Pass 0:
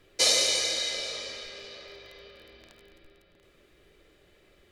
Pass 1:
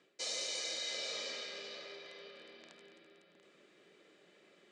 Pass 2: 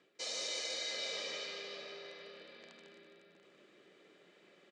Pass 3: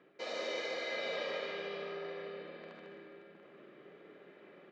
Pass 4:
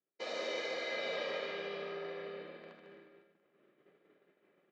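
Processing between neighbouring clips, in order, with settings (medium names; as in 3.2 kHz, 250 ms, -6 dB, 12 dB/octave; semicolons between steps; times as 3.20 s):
elliptic band-pass 180–8000 Hz, stop band 40 dB; reverse; compression 8:1, threshold -35 dBFS, peak gain reduction 15.5 dB; reverse; trim -2 dB
treble shelf 9.4 kHz -10.5 dB; delay 150 ms -5 dB
low-pass 1.8 kHz 12 dB/octave; reverberation RT60 0.35 s, pre-delay 42 ms, DRR 4.5 dB; trim +7 dB
expander -46 dBFS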